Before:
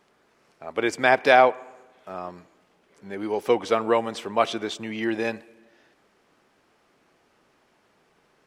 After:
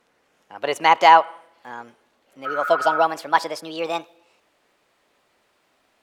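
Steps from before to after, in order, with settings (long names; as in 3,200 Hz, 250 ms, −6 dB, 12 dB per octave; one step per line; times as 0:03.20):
gliding playback speed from 120% → 161%
dynamic equaliser 940 Hz, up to +7 dB, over −32 dBFS, Q 1
healed spectral selection 0:02.48–0:03.01, 1,200–2,600 Hz after
level −1.5 dB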